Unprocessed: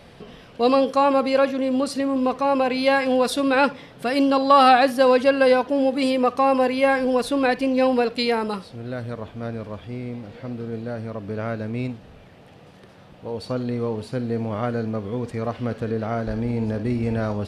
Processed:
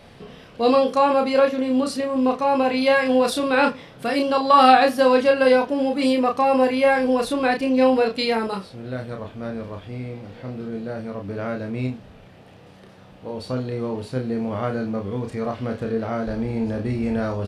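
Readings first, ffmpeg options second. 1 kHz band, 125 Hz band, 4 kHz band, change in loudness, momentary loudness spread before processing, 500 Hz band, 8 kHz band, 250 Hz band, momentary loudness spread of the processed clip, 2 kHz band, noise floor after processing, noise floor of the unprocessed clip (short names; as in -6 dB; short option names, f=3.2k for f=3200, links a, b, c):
+1.0 dB, -1.0 dB, +0.5 dB, +0.5 dB, 15 LU, +0.5 dB, +0.5 dB, +0.5 dB, 15 LU, +0.5 dB, -47 dBFS, -47 dBFS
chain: -filter_complex "[0:a]asplit=2[a][b];[b]adelay=31,volume=-4dB[c];[a][c]amix=inputs=2:normalize=0,volume=-1dB"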